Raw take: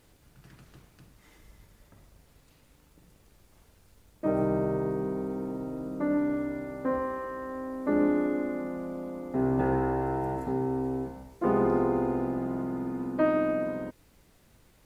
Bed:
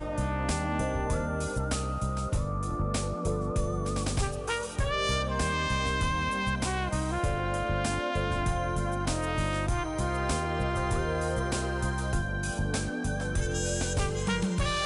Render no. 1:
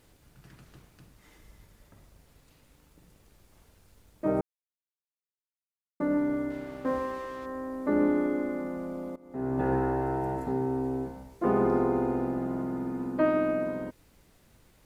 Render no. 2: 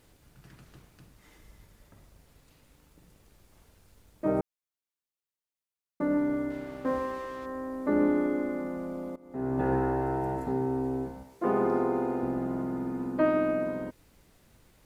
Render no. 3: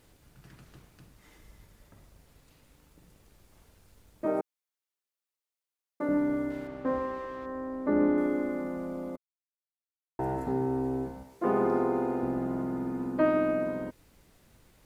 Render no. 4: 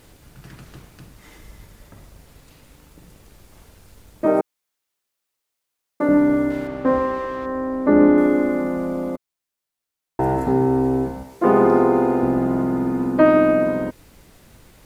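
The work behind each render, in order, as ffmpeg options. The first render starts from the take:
ffmpeg -i in.wav -filter_complex "[0:a]asettb=1/sr,asplit=3[link_01][link_02][link_03];[link_01]atrim=end=6.504[link_04];[link_02]atrim=start=6.5:end=7.46,asetpts=PTS-STARTPTS,afade=type=in:duration=0.004:curve=qsin,afade=type=out:start_time=0.956:duration=0.004:curve=qsin,aeval=exprs='sgn(val(0))*max(abs(val(0))-0.00398,0)':channel_layout=same[link_05];[link_03]atrim=start=7.456[link_06];[link_04][link_05]acrossfade=duration=0.004:curve1=hsin:curve2=qsin[link_07];[link_07][link_06]acrossfade=duration=0.004:curve1=qsin:curve2=hsin,asplit=4[link_08][link_09][link_10][link_11];[link_08]atrim=end=4.41,asetpts=PTS-STARTPTS,afade=type=out:start_time=4.406:duration=0.004:curve=hsin[link_12];[link_09]atrim=start=4.41:end=6,asetpts=PTS-STARTPTS,volume=0[link_13];[link_10]atrim=start=6:end=9.16,asetpts=PTS-STARTPTS,afade=type=in:duration=0.004:curve=hsin,afade=type=out:start_time=3.156:duration=0.004:curve=hsin:silence=0.0944061[link_14];[link_11]atrim=start=9.16,asetpts=PTS-STARTPTS,afade=type=in:duration=0.57:silence=0.0944061[link_15];[link_12][link_13][link_14][link_15]concat=n=4:v=0:a=1" out.wav
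ffmpeg -i in.wav -filter_complex "[0:a]asettb=1/sr,asplit=3[link_01][link_02][link_03];[link_01]atrim=end=11.234[link_04];[link_02]atrim=start=11.23:end=12.23,asetpts=PTS-STARTPTS,afade=type=in:duration=0.004:curve=qsin,afade=type=out:start_time=0.996:duration=0.004:curve=qsin,highpass=frequency=230:poles=1[link_05];[link_03]atrim=start=12.226[link_06];[link_04][link_05]acrossfade=duration=0.004:curve1=hsin:curve2=qsin[link_07];[link_07][link_06]acrossfade=duration=0.004:curve1=qsin:curve2=hsin" out.wav
ffmpeg -i in.wav -filter_complex "[0:a]asettb=1/sr,asplit=3[link_01][link_02][link_03];[link_01]atrim=end=4.254[link_04];[link_02]atrim=start=4.25:end=6.09,asetpts=PTS-STARTPTS,afade=type=in:duration=0.004:curve=qsin,afade=type=out:start_time=1.836:duration=0.004:curve=qsin,highpass=310[link_05];[link_03]atrim=start=6.086[link_06];[link_04][link_05]acrossfade=duration=0.004:curve1=hsin:curve2=qsin[link_07];[link_07][link_06]acrossfade=duration=0.004:curve1=qsin:curve2=hsin,asettb=1/sr,asplit=3[link_08][link_09][link_10];[link_08]atrim=end=6.674[link_11];[link_09]atrim=start=6.67:end=8.18,asetpts=PTS-STARTPTS,afade=type=in:duration=0.004:curve=qsin,afade=type=out:start_time=1.506:duration=0.004:curve=qsin,lowpass=frequency=2400:poles=1[link_12];[link_10]atrim=start=8.176[link_13];[link_11][link_12]acrossfade=duration=0.004:curve1=hsin:curve2=qsin[link_14];[link_14][link_13]acrossfade=duration=0.004:curve1=qsin:curve2=hsin,asplit=3[link_15][link_16][link_17];[link_15]atrim=end=9.17,asetpts=PTS-STARTPTS,afade=type=out:start_time=9.166:duration=0.004:curve=hsin[link_18];[link_16]atrim=start=9.17:end=10.19,asetpts=PTS-STARTPTS,volume=0[link_19];[link_17]atrim=start=10.19,asetpts=PTS-STARTPTS,afade=type=in:duration=0.004:curve=hsin[link_20];[link_18][link_19][link_20]concat=n=3:v=0:a=1" out.wav
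ffmpeg -i in.wav -af "volume=11.5dB,alimiter=limit=-3dB:level=0:latency=1" out.wav

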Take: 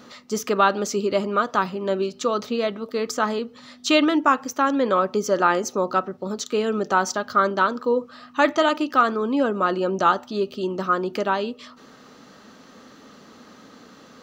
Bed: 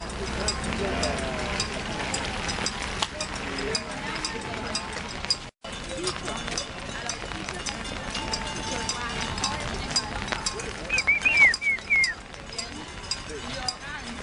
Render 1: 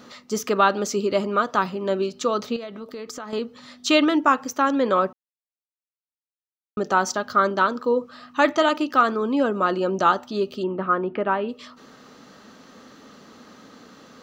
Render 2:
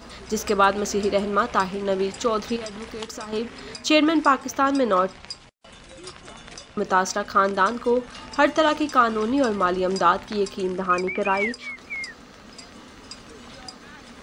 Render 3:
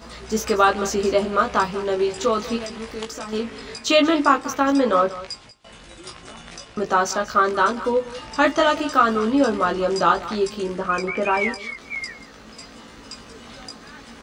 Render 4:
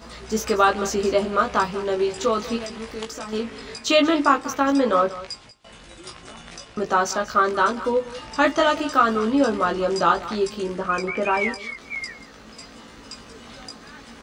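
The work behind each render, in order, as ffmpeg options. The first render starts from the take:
ffmpeg -i in.wav -filter_complex "[0:a]asettb=1/sr,asplit=3[link_01][link_02][link_03];[link_01]atrim=end=2.564[link_04];[link_02]atrim=start=2.56:end=3.33,asetpts=PTS-STARTPTS,afade=type=in:duration=0.004:curve=qsin,afade=type=out:start_time=0.766:duration=0.004:curve=qsin,acompressor=threshold=-32dB:ratio=5:attack=3.2:release=140:knee=1:detection=peak[link_05];[link_03]atrim=start=3.326[link_06];[link_04][link_05]acrossfade=duration=0.004:curve1=hsin:curve2=qsin[link_07];[link_07][link_06]acrossfade=duration=0.004:curve1=qsin:curve2=hsin,asplit=3[link_08][link_09][link_10];[link_08]afade=type=out:start_time=10.62:duration=0.02[link_11];[link_09]lowpass=frequency=2500:width=0.5412,lowpass=frequency=2500:width=1.3066,afade=type=in:start_time=10.62:duration=0.02,afade=type=out:start_time=11.48:duration=0.02[link_12];[link_10]afade=type=in:start_time=11.48:duration=0.02[link_13];[link_11][link_12][link_13]amix=inputs=3:normalize=0,asplit=3[link_14][link_15][link_16];[link_14]atrim=end=5.13,asetpts=PTS-STARTPTS,afade=type=out:start_time=5.126:duration=0.004:curve=hsin[link_17];[link_15]atrim=start=5.13:end=6.77,asetpts=PTS-STARTPTS,volume=0[link_18];[link_16]atrim=start=6.77,asetpts=PTS-STARTPTS,afade=type=in:duration=0.004:curve=hsin[link_19];[link_17][link_18][link_19]concat=n=3:v=0:a=1" out.wav
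ffmpeg -i in.wav -i bed.wav -filter_complex "[1:a]volume=-10.5dB[link_01];[0:a][link_01]amix=inputs=2:normalize=0" out.wav
ffmpeg -i in.wav -filter_complex "[0:a]asplit=2[link_01][link_02];[link_02]adelay=18,volume=-3dB[link_03];[link_01][link_03]amix=inputs=2:normalize=0,aecho=1:1:188:0.158" out.wav
ffmpeg -i in.wav -af "volume=-1dB" out.wav

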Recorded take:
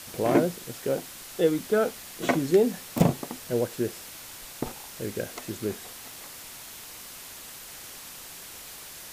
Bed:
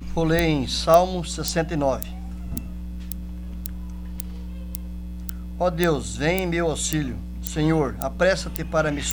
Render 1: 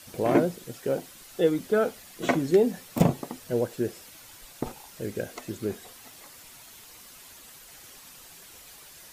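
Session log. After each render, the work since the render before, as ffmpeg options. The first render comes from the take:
ffmpeg -i in.wav -af "afftdn=noise_reduction=8:noise_floor=-44" out.wav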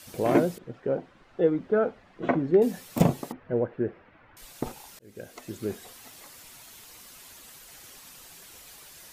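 ffmpeg -i in.wav -filter_complex "[0:a]asettb=1/sr,asplit=3[link_01][link_02][link_03];[link_01]atrim=end=0.584[link_04];[link_02]atrim=start=0.58:end=2.62,asetpts=PTS-STARTPTS,afade=type=in:duration=0.004:curve=qsin,afade=type=out:start_time=2.036:duration=0.004:curve=qsin,lowpass=1600[link_05];[link_03]atrim=start=2.616[link_06];[link_04][link_05]acrossfade=duration=0.004:curve1=hsin:curve2=qsin[link_07];[link_07][link_06]acrossfade=duration=0.004:curve1=qsin:curve2=hsin,asettb=1/sr,asplit=3[link_08][link_09][link_10];[link_08]atrim=end=3.324[link_11];[link_09]atrim=start=3.32:end=4.37,asetpts=PTS-STARTPTS,afade=type=in:duration=0.004:curve=qsin,afade=type=out:start_time=1.046:duration=0.004:curve=qsin,lowpass=frequency=2000:width=0.5412,lowpass=frequency=2000:width=1.3066[link_12];[link_10]atrim=start=4.366[link_13];[link_11][link_12]acrossfade=duration=0.004:curve1=hsin:curve2=qsin[link_14];[link_14][link_13]acrossfade=duration=0.004:curve1=qsin:curve2=hsin,asplit=2[link_15][link_16];[link_15]atrim=end=4.99,asetpts=PTS-STARTPTS,afade=type=out:start_time=4.986:duration=0.004:curve=hsin[link_17];[link_16]atrim=start=4.99,asetpts=PTS-STARTPTS,afade=type=in:duration=0.98:curve=qsin[link_18];[link_17][link_18]concat=n=2:v=0:a=1" out.wav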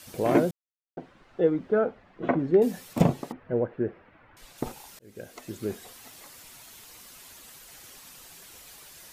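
ffmpeg -i in.wav -filter_complex "[0:a]asettb=1/sr,asplit=3[link_01][link_02][link_03];[link_01]atrim=end=1.814[link_04];[link_02]atrim=start=1.81:end=2.39,asetpts=PTS-STARTPTS,afade=type=in:duration=0.004:curve=qsin,afade=type=out:start_time=0.576:duration=0.004:curve=qsin,highshelf=frequency=5000:gain=-11.5[link_05];[link_03]atrim=start=2.386[link_06];[link_04][link_05]acrossfade=duration=0.004:curve1=hsin:curve2=qsin[link_07];[link_07][link_06]acrossfade=duration=0.004:curve1=qsin:curve2=hsin,asettb=1/sr,asplit=3[link_08][link_09][link_10];[link_08]atrim=end=2.934[link_11];[link_09]atrim=start=2.93:end=4.58,asetpts=PTS-STARTPTS,afade=type=in:duration=0.004:curve=qsin,afade=type=out:start_time=1.646:duration=0.004:curve=qsin,highshelf=frequency=7600:gain=-9.5[link_12];[link_10]atrim=start=4.576[link_13];[link_11][link_12]acrossfade=duration=0.004:curve1=hsin:curve2=qsin[link_14];[link_14][link_13]acrossfade=duration=0.004:curve1=qsin:curve2=hsin,asplit=3[link_15][link_16][link_17];[link_15]atrim=end=0.51,asetpts=PTS-STARTPTS,afade=type=out:start_time=0.506:duration=0.004:curve=hsin[link_18];[link_16]atrim=start=0.51:end=0.97,asetpts=PTS-STARTPTS,volume=0[link_19];[link_17]atrim=start=0.97,asetpts=PTS-STARTPTS,afade=type=in:duration=0.004:curve=hsin[link_20];[link_18][link_19][link_20]concat=n=3:v=0:a=1" out.wav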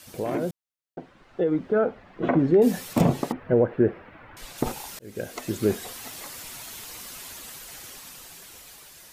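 ffmpeg -i in.wav -af "alimiter=limit=-18.5dB:level=0:latency=1:release=63,dynaudnorm=framelen=550:gausssize=7:maxgain=9dB" out.wav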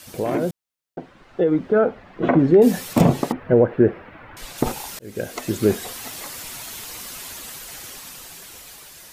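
ffmpeg -i in.wav -af "volume=5dB" out.wav

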